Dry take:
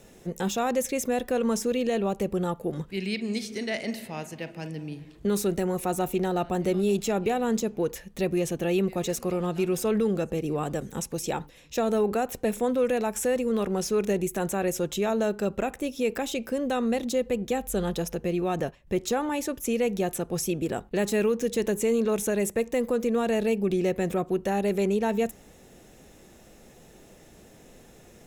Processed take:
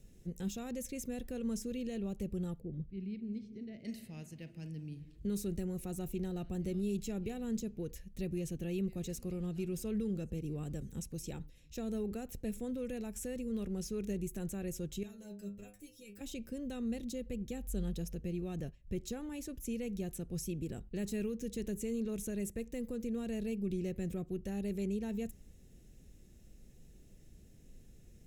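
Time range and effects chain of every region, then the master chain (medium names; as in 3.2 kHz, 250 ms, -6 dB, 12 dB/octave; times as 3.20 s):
2.60–3.85 s: low-pass 1.8 kHz + peaking EQ 1.3 kHz -13.5 dB 1.7 oct
15.03–16.21 s: treble shelf 4.6 kHz +9.5 dB + inharmonic resonator 100 Hz, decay 0.34 s, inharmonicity 0.002
whole clip: amplifier tone stack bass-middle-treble 10-0-1; band-stop 3.5 kHz, Q 25; trim +8 dB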